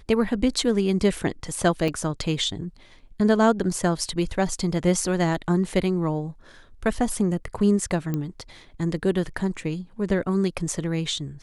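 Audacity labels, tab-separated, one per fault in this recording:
1.880000	1.880000	drop-out 4.4 ms
8.140000	8.140000	click −15 dBFS

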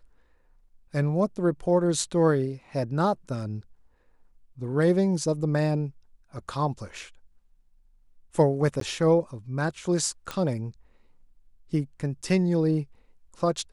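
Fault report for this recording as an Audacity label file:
8.800000	8.810000	drop-out 13 ms
10.310000	10.310000	click −16 dBFS

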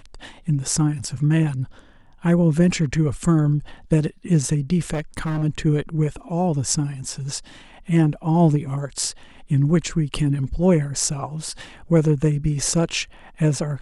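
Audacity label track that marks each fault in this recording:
4.920000	5.440000	clipping −20.5 dBFS

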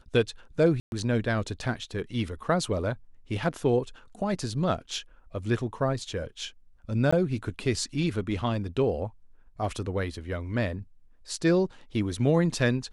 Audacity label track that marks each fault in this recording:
0.800000	0.920000	drop-out 121 ms
7.110000	7.120000	drop-out 15 ms

